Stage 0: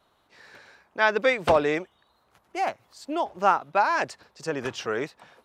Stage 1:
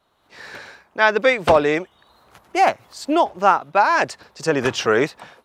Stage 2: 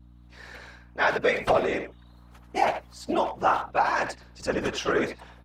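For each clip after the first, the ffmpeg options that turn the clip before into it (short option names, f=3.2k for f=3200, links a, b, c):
-af "dynaudnorm=f=210:g=3:m=14.5dB,volume=-1dB"
-filter_complex "[0:a]afftfilt=real='hypot(re,im)*cos(2*PI*random(0))':imag='hypot(re,im)*sin(2*PI*random(1))':win_size=512:overlap=0.75,asplit=2[a][b];[b]adelay=80,highpass=300,lowpass=3.4k,asoftclip=type=hard:threshold=-17.5dB,volume=-8dB[c];[a][c]amix=inputs=2:normalize=0,aeval=exprs='val(0)+0.00398*(sin(2*PI*60*n/s)+sin(2*PI*2*60*n/s)/2+sin(2*PI*3*60*n/s)/3+sin(2*PI*4*60*n/s)/4+sin(2*PI*5*60*n/s)/5)':c=same,volume=-2dB"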